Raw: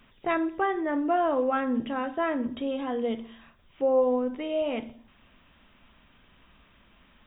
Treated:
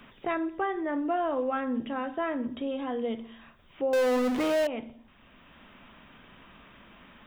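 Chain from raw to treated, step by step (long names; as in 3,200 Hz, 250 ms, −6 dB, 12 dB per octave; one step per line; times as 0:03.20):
0:03.93–0:04.67: power curve on the samples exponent 0.35
multiband upward and downward compressor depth 40%
level −3.5 dB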